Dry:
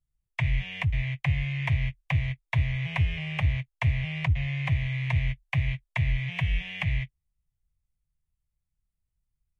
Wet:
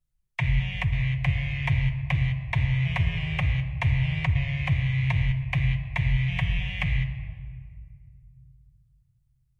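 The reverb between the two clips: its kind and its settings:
rectangular room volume 3,400 cubic metres, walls mixed, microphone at 0.97 metres
level +1 dB

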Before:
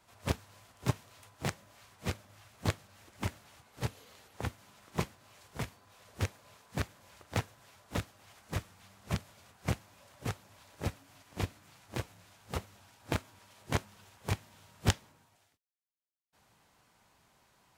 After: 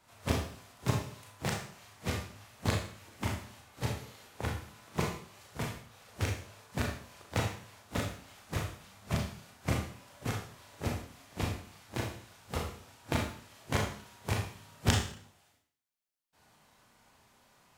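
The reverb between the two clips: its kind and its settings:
four-comb reverb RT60 0.54 s, combs from 26 ms, DRR −0.5 dB

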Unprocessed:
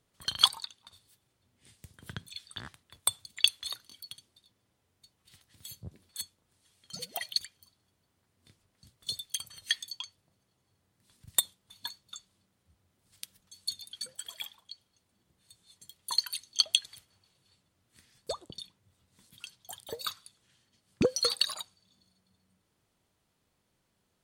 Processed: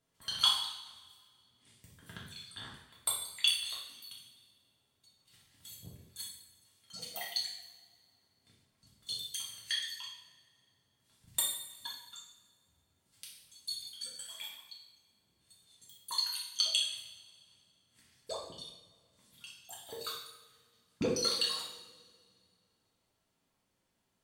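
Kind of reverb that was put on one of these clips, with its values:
coupled-rooms reverb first 0.77 s, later 2.3 s, from −19 dB, DRR −5.5 dB
level −9 dB

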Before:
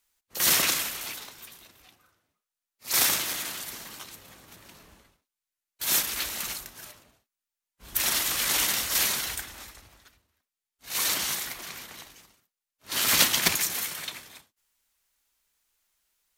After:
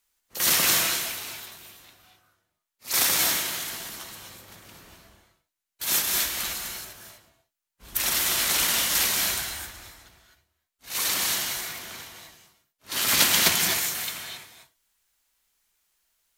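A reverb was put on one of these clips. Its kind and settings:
reverb whose tail is shaped and stops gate 280 ms rising, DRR 1 dB

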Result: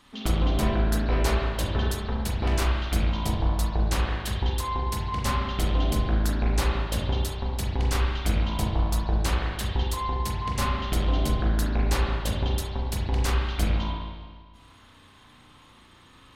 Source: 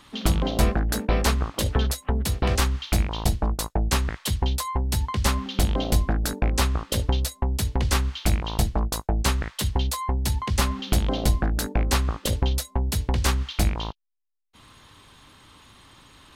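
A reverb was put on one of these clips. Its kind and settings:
spring reverb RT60 1.6 s, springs 33/37 ms, chirp 35 ms, DRR −3.5 dB
level −6.5 dB

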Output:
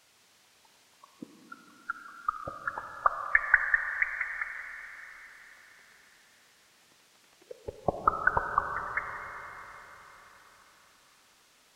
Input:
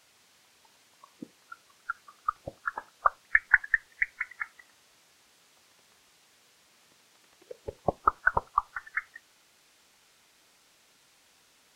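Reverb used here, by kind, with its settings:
comb and all-pass reverb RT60 4.4 s, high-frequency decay 0.8×, pre-delay 15 ms, DRR 5.5 dB
level −1 dB

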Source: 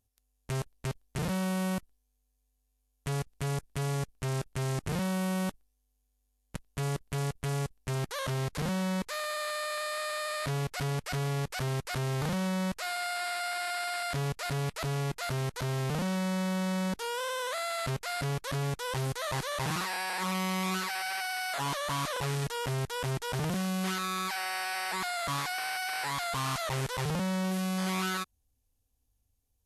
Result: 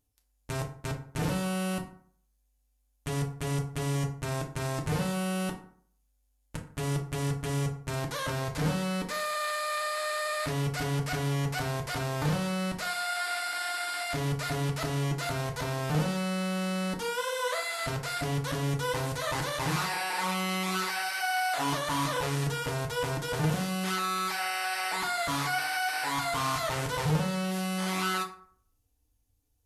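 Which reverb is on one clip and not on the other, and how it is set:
feedback delay network reverb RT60 0.55 s, low-frequency decay 1×, high-frequency decay 0.55×, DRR 0.5 dB

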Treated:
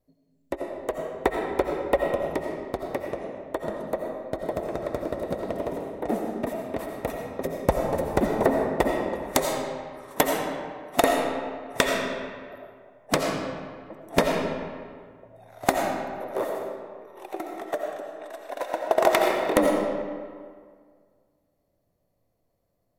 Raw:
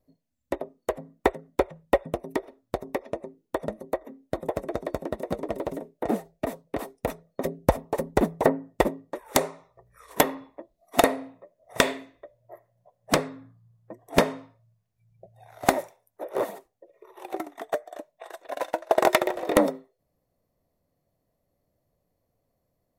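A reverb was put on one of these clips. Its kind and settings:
comb and all-pass reverb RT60 1.9 s, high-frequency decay 0.65×, pre-delay 45 ms, DRR 1 dB
level −1.5 dB

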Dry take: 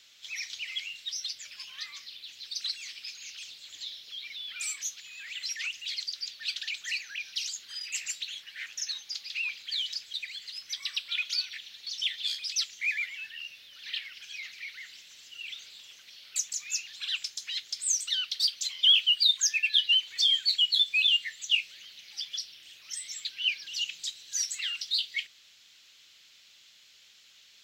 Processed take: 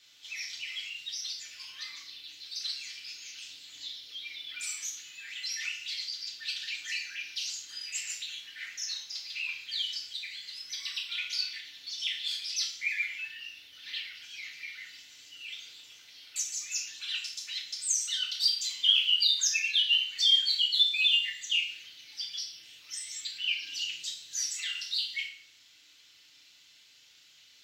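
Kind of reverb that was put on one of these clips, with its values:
feedback delay network reverb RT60 0.6 s, low-frequency decay 1.45×, high-frequency decay 0.9×, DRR −3.5 dB
level −6 dB

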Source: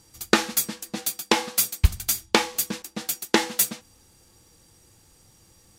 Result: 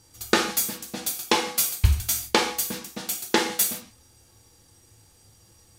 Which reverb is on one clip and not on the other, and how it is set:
reverb whose tail is shaped and stops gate 180 ms falling, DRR 2 dB
level −2.5 dB

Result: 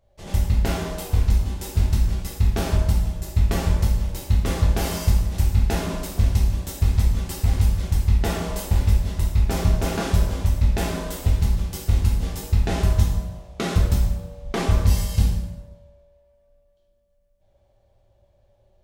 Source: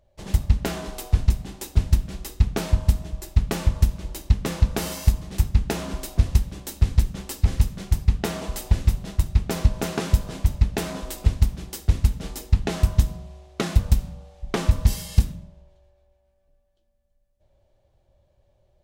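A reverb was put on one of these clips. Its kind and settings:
dense smooth reverb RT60 1 s, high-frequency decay 0.75×, DRR −4.5 dB
level −3.5 dB

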